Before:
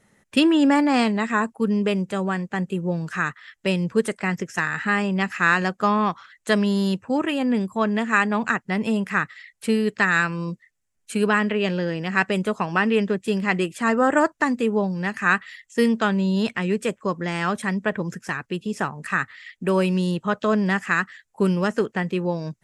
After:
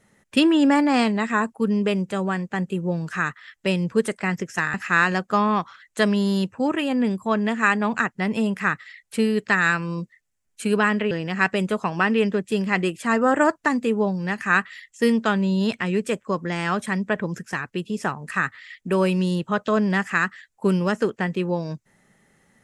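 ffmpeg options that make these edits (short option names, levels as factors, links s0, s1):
-filter_complex "[0:a]asplit=3[s0][s1][s2];[s0]atrim=end=4.742[s3];[s1]atrim=start=5.238:end=11.612[s4];[s2]atrim=start=11.868[s5];[s3][s4]acrossfade=d=0.004:c1=hsin:c2=hsin[s6];[s6][s5]acrossfade=d=0.004:c1=hsin:c2=hsin"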